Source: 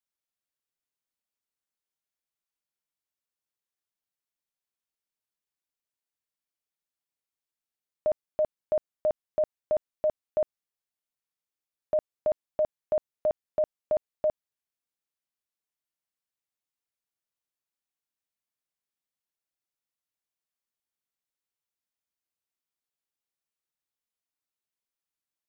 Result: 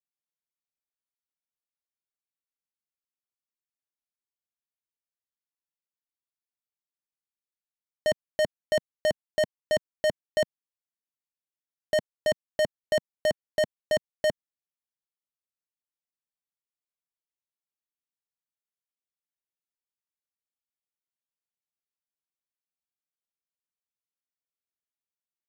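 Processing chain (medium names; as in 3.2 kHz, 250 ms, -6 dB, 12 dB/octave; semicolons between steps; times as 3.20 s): peaking EQ 170 Hz +4.5 dB 0.95 oct; waveshaping leveller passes 5; trim -1.5 dB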